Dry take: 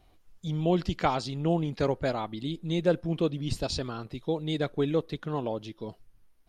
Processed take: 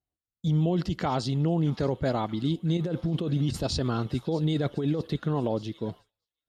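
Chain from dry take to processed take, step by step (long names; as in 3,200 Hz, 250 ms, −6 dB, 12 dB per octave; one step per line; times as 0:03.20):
low-shelf EQ 330 Hz +7.5 dB
notch filter 2,400 Hz, Q 9.1
delay with a high-pass on its return 625 ms, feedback 72%, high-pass 1,700 Hz, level −19 dB
0:02.77–0:05.16: compressor whose output falls as the input rises −27 dBFS, ratio −1
brickwall limiter −20 dBFS, peak gain reduction 9 dB
high-pass filter 70 Hz
downward expander −40 dBFS
level +2 dB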